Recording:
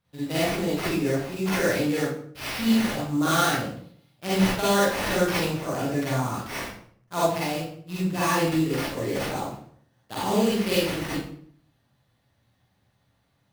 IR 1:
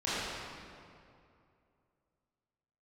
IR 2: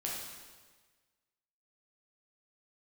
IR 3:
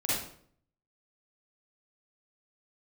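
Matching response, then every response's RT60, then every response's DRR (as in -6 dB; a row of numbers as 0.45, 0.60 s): 3; 2.5, 1.4, 0.60 s; -12.5, -4.5, -9.0 dB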